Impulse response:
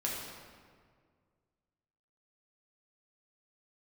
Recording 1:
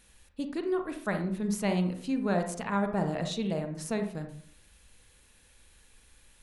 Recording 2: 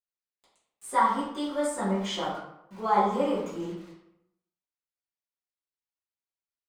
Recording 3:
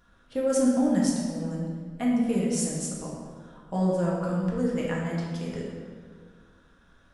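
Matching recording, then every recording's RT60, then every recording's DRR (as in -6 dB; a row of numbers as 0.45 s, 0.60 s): 3; 0.55 s, 0.80 s, 1.9 s; 5.5 dB, -12.0 dB, -4.5 dB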